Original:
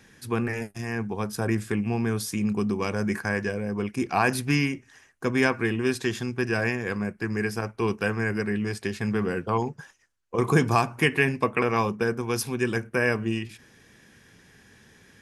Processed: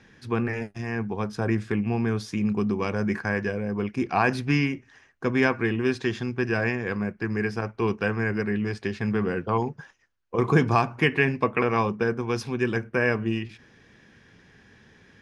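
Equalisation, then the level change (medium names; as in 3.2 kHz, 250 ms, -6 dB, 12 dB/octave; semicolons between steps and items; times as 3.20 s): distance through air 110 m; peaking EQ 7.7 kHz -4 dB 0.32 oct; +1.0 dB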